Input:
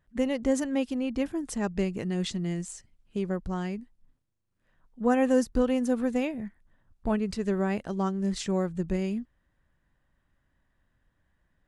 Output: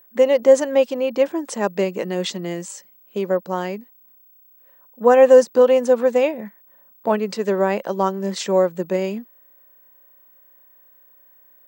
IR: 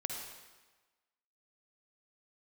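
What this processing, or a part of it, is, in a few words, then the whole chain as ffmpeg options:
old television with a line whistle: -af "highpass=f=220:w=0.5412,highpass=f=220:w=1.3066,equalizer=f=260:t=q:w=4:g=-9,equalizer=f=540:t=q:w=4:g=9,equalizer=f=970:t=q:w=4:g=6,lowpass=f=8200:w=0.5412,lowpass=f=8200:w=1.3066,aeval=exprs='val(0)+0.00126*sin(2*PI*15734*n/s)':c=same,volume=2.66"

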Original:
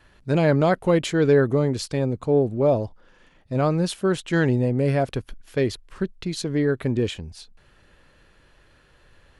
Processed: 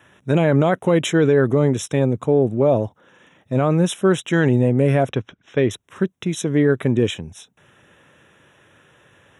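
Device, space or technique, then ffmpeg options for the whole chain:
PA system with an anti-feedback notch: -filter_complex "[0:a]highpass=f=100:w=0.5412,highpass=f=100:w=1.3066,asuperstop=centerf=4600:order=20:qfactor=3.2,alimiter=limit=0.251:level=0:latency=1:release=38,asettb=1/sr,asplit=3[s0][s1][s2];[s0]atrim=end=5.104[s3];[s1]atrim=start=5.1:end=5.71,asetpts=PTS-STARTPTS,afade=t=in:d=0.004:c=qsin,afade=t=out:st=0.606:d=0.004:c=qsin,lowpass=f=5400:w=0.5412,lowpass=f=5400:w=1.3066[s4];[s2]atrim=start=5.706[s5];[s3][s4]acrossfade=d=0.004:c1=hsin:c2=qsin[s6];[s6][s5]acrossfade=d=0.004:c1=qsin:c2=hsin,volume=1.88"

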